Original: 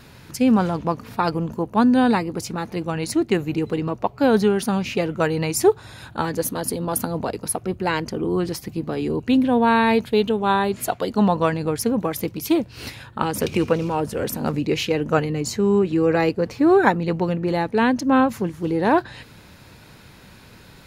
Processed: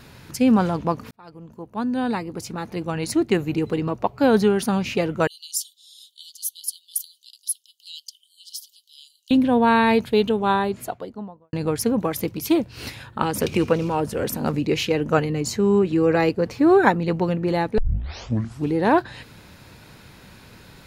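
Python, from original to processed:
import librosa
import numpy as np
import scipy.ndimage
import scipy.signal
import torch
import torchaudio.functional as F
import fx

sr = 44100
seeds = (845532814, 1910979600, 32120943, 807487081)

y = fx.cheby1_highpass(x, sr, hz=3000.0, order=8, at=(5.27, 9.31))
y = fx.studio_fade_out(y, sr, start_s=10.33, length_s=1.2)
y = fx.edit(y, sr, fx.fade_in_span(start_s=1.11, length_s=2.07),
    fx.tape_start(start_s=17.78, length_s=0.97), tone=tone)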